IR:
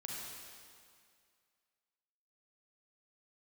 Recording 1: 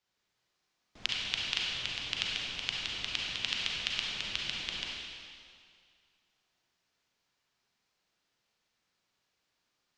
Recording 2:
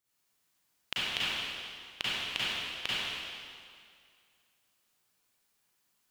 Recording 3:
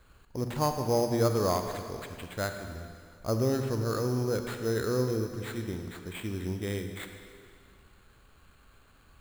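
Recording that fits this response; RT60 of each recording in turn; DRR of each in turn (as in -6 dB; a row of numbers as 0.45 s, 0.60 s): 1; 2.2 s, 2.2 s, 2.2 s; -3.5 dB, -10.5 dB, 6.0 dB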